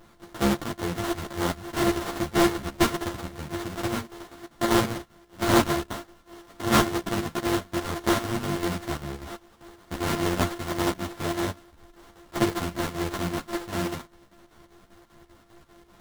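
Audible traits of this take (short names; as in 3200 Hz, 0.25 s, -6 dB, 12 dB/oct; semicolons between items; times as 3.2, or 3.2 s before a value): a buzz of ramps at a fixed pitch in blocks of 128 samples; chopped level 5.1 Hz, depth 60%, duty 70%; aliases and images of a low sample rate 2500 Hz, jitter 20%; a shimmering, thickened sound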